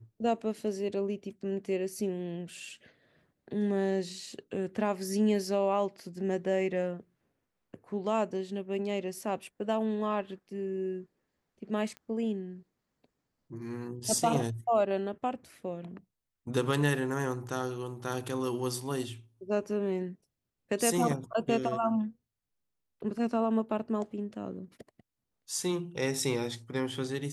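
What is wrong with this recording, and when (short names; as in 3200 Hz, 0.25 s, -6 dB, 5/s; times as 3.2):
11.97 pop -30 dBFS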